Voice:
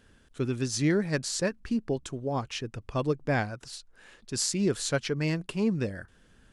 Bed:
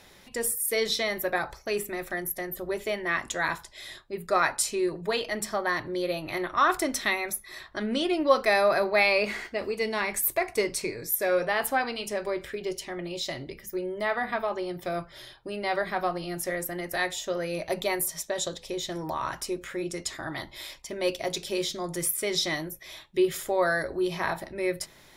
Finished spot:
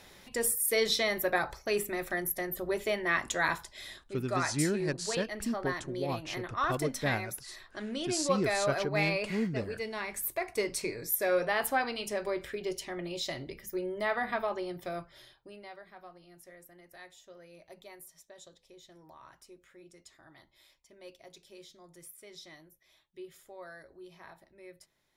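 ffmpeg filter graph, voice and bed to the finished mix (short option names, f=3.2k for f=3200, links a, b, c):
-filter_complex "[0:a]adelay=3750,volume=-5dB[a];[1:a]volume=4.5dB,afade=t=out:st=3.66:d=0.53:silence=0.421697,afade=t=in:st=10.26:d=0.63:silence=0.530884,afade=t=out:st=14.42:d=1.35:silence=0.105925[b];[a][b]amix=inputs=2:normalize=0"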